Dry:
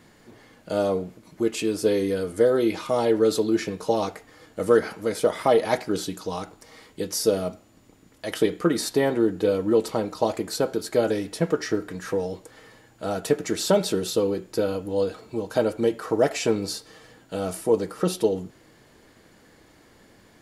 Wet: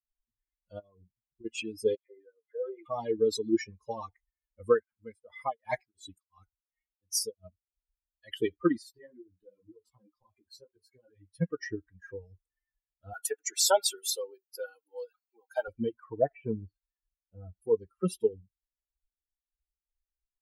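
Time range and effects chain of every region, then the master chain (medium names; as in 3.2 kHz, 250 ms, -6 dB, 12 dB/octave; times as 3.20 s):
0.79–1.45 s: low-pass 4.3 kHz + compression 10:1, threshold -26 dBFS
1.95–2.86 s: high-pass 510 Hz + tape spacing loss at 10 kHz 33 dB + phase dispersion lows, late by 150 ms, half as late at 2.6 kHz
4.68–7.44 s: dynamic bell 9 kHz, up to +5 dB, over -53 dBFS, Q 7.4 + tremolo of two beating tones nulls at 2.8 Hz
8.78–11.35 s: bass shelf 100 Hz -5 dB + compression 5:1, threshold -24 dBFS + detune thickener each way 35 cents
13.13–15.68 s: high-pass 440 Hz + treble shelf 5.1 kHz +8.5 dB + small resonant body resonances 810/1400 Hz, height 8 dB, ringing for 35 ms
16.18–17.62 s: low-pass 1.6 kHz + band-stop 1.1 kHz, Q 13
whole clip: expander on every frequency bin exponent 3; dynamic bell 6.2 kHz, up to +4 dB, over -51 dBFS, Q 0.8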